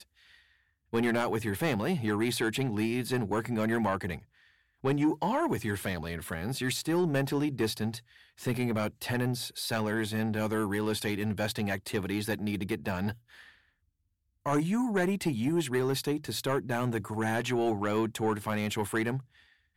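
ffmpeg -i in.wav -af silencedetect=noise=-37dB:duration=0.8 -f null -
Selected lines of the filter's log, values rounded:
silence_start: 0.00
silence_end: 0.93 | silence_duration: 0.93
silence_start: 13.12
silence_end: 14.46 | silence_duration: 1.34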